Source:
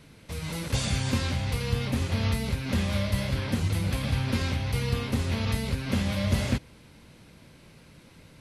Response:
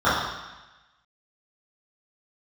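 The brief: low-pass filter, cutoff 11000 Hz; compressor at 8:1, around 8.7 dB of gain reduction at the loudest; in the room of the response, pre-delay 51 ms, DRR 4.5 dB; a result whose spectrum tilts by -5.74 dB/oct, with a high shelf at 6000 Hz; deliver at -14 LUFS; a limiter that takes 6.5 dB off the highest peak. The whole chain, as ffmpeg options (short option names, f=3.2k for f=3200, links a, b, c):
-filter_complex "[0:a]lowpass=11k,highshelf=f=6k:g=-8,acompressor=threshold=-29dB:ratio=8,alimiter=level_in=2.5dB:limit=-24dB:level=0:latency=1,volume=-2.5dB,asplit=2[a][b];[1:a]atrim=start_sample=2205,adelay=51[c];[b][c]afir=irnorm=-1:irlink=0,volume=-27dB[d];[a][d]amix=inputs=2:normalize=0,volume=21dB"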